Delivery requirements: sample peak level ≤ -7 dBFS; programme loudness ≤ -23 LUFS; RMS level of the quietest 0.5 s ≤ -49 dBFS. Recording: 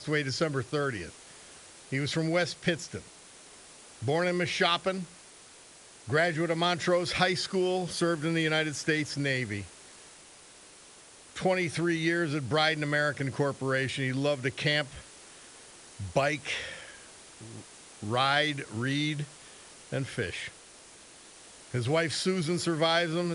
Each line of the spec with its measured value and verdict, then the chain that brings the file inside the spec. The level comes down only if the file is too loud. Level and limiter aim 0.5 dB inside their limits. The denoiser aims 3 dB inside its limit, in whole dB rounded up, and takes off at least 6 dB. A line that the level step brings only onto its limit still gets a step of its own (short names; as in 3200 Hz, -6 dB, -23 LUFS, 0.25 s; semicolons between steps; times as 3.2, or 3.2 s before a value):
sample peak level -11.0 dBFS: OK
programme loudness -29.0 LUFS: OK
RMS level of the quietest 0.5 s -53 dBFS: OK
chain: none